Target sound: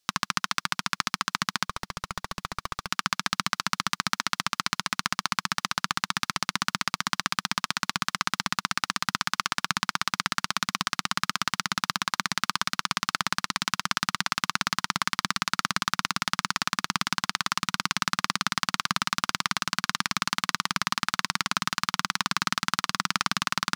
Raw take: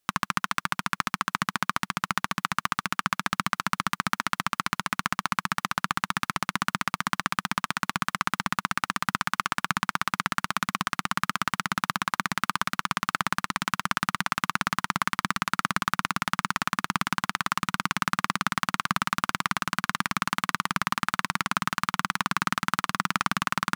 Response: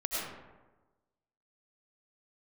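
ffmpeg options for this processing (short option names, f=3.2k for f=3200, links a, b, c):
-filter_complex "[0:a]equalizer=f=4.9k:w=0.89:g=11,asettb=1/sr,asplit=3[a][b][c];[a]atrim=end=1.654[d];[b]atrim=start=1.65:end=2.9,asetpts=PTS-STARTPTS,afade=t=in:d=0.004:c=qsin,afade=t=out:st=1.246:d=0.004:c=qsin,aeval=exprs='(tanh(6.31*val(0)+0.5)-tanh(0.5))/6.31':c=same[e];[c]atrim=start=2.896[f];[d][e]acrossfade=d=0.004:c1=hsin:c2=qsin[g];[g][f]acrossfade=d=0.004:c1=qsin:c2=hsin,volume=-3dB"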